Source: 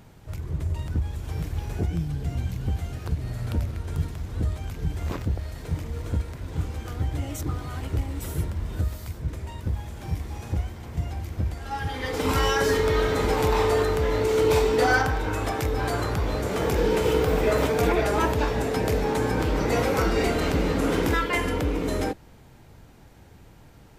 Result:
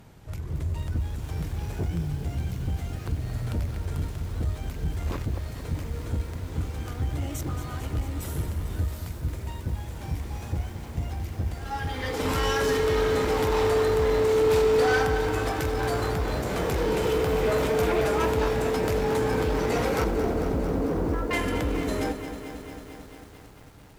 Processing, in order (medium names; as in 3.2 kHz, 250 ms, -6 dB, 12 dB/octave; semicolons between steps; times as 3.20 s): 20.04–21.31 s: Gaussian low-pass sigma 7.6 samples; valve stage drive 20 dB, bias 0.25; bit-crushed delay 224 ms, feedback 80%, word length 8-bit, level -10.5 dB